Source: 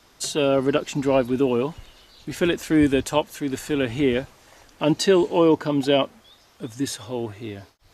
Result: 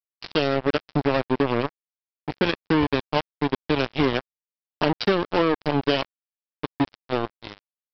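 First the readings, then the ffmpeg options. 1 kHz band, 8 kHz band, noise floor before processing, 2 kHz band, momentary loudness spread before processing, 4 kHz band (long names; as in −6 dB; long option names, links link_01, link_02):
+2.0 dB, below −20 dB, −56 dBFS, +2.0 dB, 17 LU, −0.5 dB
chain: -af "acompressor=threshold=-24dB:ratio=6,aresample=11025,acrusher=bits=3:mix=0:aa=0.5,aresample=44100,volume=5.5dB"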